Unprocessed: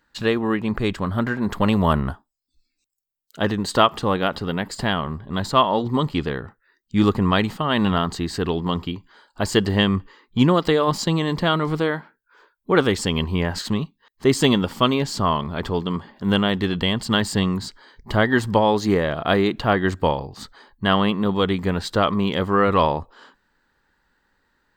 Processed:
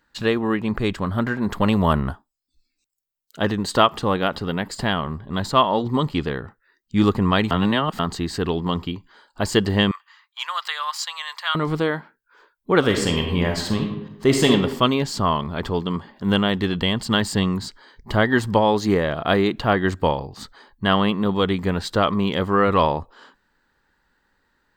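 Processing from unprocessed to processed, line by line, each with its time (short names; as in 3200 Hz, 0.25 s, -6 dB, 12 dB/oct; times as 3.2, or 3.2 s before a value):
7.51–7.99 reverse
9.91–11.55 inverse Chebyshev high-pass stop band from 310 Hz, stop band 60 dB
12.79–14.51 reverb throw, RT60 0.94 s, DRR 2.5 dB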